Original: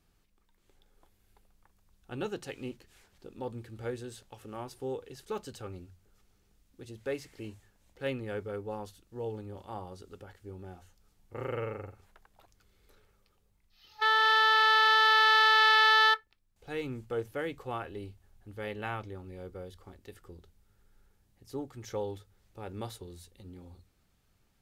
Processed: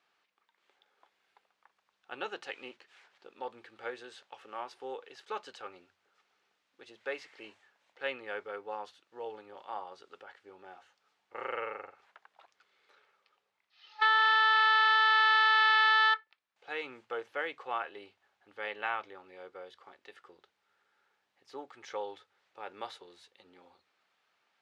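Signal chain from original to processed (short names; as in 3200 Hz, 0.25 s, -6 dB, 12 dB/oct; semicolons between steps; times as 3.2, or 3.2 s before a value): compressor, threshold -27 dBFS, peak gain reduction 6.5 dB; BPF 790–3300 Hz; gain +5.5 dB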